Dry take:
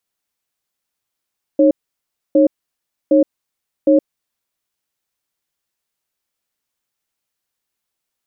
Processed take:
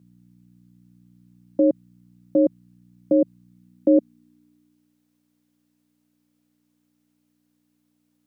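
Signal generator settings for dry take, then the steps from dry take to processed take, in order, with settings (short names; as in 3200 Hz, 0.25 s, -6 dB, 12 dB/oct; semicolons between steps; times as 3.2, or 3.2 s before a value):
cadence 306 Hz, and 549 Hz, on 0.12 s, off 0.64 s, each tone -10.5 dBFS 2.47 s
limiter -11.5 dBFS; hum 60 Hz, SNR 24 dB; high-pass sweep 160 Hz -> 460 Hz, 3.47–5.06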